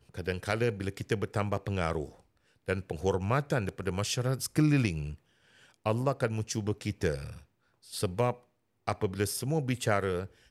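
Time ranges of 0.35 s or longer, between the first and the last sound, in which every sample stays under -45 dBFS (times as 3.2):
2.12–2.68
5.15–5.74
7.39–7.87
8.36–8.87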